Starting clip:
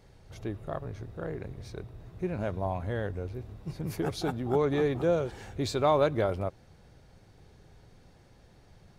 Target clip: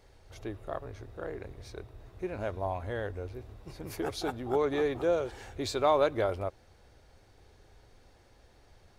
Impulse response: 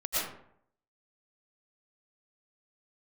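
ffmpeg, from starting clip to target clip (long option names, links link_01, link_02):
-af "equalizer=frequency=160:width=1.4:gain=-13"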